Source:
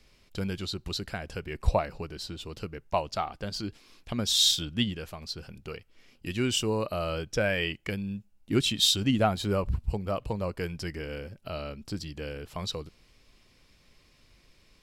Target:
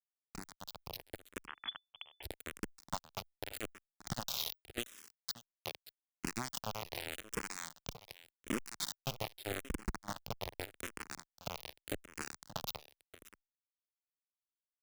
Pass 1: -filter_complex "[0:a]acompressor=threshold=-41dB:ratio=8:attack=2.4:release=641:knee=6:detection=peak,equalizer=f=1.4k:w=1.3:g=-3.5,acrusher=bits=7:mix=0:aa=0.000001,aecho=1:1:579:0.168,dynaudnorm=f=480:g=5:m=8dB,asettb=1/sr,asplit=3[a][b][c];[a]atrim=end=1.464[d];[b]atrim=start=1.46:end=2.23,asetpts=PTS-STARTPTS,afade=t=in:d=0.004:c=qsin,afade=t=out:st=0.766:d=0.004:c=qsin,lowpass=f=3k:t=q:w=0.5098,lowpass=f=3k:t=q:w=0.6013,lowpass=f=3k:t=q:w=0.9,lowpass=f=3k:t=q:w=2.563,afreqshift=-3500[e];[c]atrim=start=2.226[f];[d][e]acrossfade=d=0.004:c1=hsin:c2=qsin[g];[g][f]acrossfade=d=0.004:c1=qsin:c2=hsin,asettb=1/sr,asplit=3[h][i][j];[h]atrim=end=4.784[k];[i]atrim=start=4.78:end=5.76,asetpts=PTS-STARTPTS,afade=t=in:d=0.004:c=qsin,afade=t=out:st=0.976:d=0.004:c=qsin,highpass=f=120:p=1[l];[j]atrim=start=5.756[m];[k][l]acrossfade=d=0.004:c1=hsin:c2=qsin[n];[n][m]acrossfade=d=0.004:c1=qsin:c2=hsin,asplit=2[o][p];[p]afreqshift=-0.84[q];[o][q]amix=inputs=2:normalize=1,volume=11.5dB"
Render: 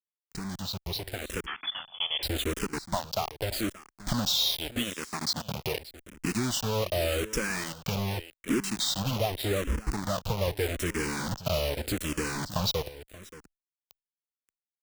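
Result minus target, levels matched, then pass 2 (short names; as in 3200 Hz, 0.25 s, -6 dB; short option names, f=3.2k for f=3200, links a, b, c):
compressor: peak gain reduction -9 dB
-filter_complex "[0:a]acompressor=threshold=-51.5dB:ratio=8:attack=2.4:release=641:knee=6:detection=peak,equalizer=f=1.4k:w=1.3:g=-3.5,acrusher=bits=7:mix=0:aa=0.000001,aecho=1:1:579:0.168,dynaudnorm=f=480:g=5:m=8dB,asettb=1/sr,asplit=3[a][b][c];[a]atrim=end=1.464[d];[b]atrim=start=1.46:end=2.23,asetpts=PTS-STARTPTS,afade=t=in:d=0.004:c=qsin,afade=t=out:st=0.766:d=0.004:c=qsin,lowpass=f=3k:t=q:w=0.5098,lowpass=f=3k:t=q:w=0.6013,lowpass=f=3k:t=q:w=0.9,lowpass=f=3k:t=q:w=2.563,afreqshift=-3500[e];[c]atrim=start=2.226[f];[d][e]acrossfade=d=0.004:c1=hsin:c2=qsin[g];[g][f]acrossfade=d=0.004:c1=qsin:c2=hsin,asettb=1/sr,asplit=3[h][i][j];[h]atrim=end=4.784[k];[i]atrim=start=4.78:end=5.76,asetpts=PTS-STARTPTS,afade=t=in:d=0.004:c=qsin,afade=t=out:st=0.976:d=0.004:c=qsin,highpass=f=120:p=1[l];[j]atrim=start=5.756[m];[k][l]acrossfade=d=0.004:c1=hsin:c2=qsin[n];[n][m]acrossfade=d=0.004:c1=qsin:c2=hsin,asplit=2[o][p];[p]afreqshift=-0.84[q];[o][q]amix=inputs=2:normalize=1,volume=11.5dB"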